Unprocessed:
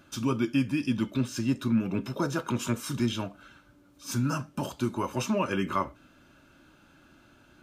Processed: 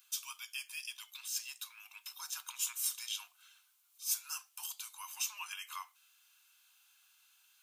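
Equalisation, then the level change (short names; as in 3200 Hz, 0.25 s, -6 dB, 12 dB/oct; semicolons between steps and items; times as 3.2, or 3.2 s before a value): rippled Chebyshev high-pass 730 Hz, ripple 6 dB; differentiator; high shelf 6600 Hz +11.5 dB; +2.5 dB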